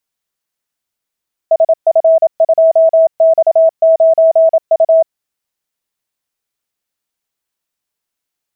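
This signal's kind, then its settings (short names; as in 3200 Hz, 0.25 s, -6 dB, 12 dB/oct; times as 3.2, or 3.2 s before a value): Morse "SF2X9U" 27 wpm 650 Hz -4.5 dBFS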